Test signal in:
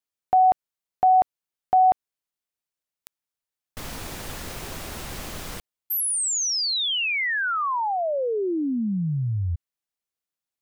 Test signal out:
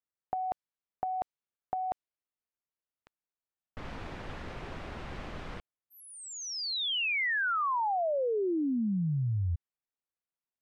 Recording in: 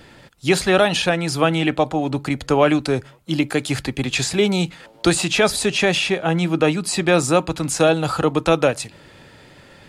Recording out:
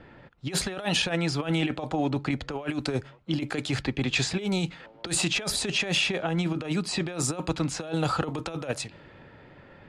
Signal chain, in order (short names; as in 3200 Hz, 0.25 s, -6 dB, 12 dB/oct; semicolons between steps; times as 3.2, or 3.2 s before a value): low-pass opened by the level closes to 1900 Hz, open at -12.5 dBFS; negative-ratio compressor -20 dBFS, ratio -0.5; gain -6.5 dB